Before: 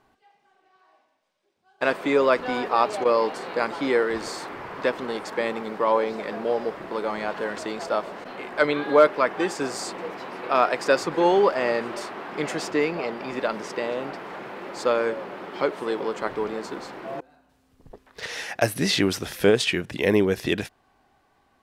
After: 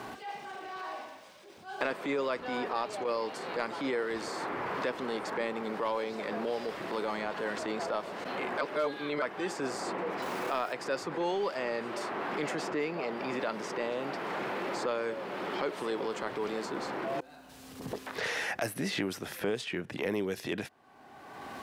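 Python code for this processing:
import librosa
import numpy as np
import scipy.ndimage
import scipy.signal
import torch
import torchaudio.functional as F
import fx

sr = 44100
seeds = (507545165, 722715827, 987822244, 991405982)

y = fx.sample_gate(x, sr, floor_db=-39.5, at=(10.22, 10.73))
y = fx.high_shelf(y, sr, hz=5300.0, db=10.5, at=(18.24, 19.4))
y = fx.edit(y, sr, fx.reverse_span(start_s=8.61, length_s=0.61), tone=tone)
y = scipy.signal.sosfilt(scipy.signal.butter(2, 56.0, 'highpass', fs=sr, output='sos'), y)
y = fx.transient(y, sr, attack_db=-8, sustain_db=1)
y = fx.band_squash(y, sr, depth_pct=100)
y = y * librosa.db_to_amplitude(-8.0)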